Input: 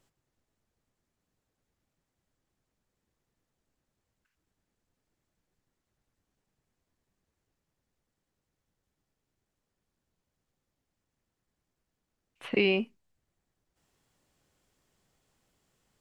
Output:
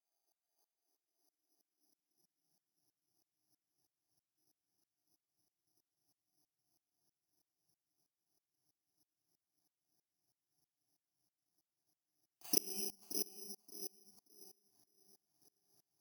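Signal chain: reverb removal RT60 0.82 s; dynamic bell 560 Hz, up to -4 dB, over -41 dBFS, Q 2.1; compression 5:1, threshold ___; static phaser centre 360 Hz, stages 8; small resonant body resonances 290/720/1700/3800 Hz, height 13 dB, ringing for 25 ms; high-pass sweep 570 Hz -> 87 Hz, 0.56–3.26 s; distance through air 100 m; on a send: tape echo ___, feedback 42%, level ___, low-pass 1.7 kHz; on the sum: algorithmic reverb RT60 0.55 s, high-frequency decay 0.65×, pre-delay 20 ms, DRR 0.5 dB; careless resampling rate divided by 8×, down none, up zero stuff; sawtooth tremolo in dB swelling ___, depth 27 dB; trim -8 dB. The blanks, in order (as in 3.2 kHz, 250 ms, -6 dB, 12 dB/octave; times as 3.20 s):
-32 dBFS, 576 ms, -4.5 dB, 3.1 Hz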